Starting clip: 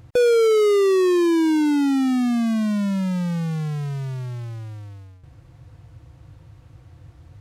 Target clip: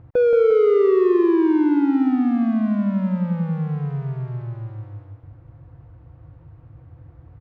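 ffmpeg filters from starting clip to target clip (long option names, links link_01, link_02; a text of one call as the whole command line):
ffmpeg -i in.wav -af "lowpass=1400,aecho=1:1:176|352|528|704|880|1056:0.473|0.237|0.118|0.0591|0.0296|0.0148" out.wav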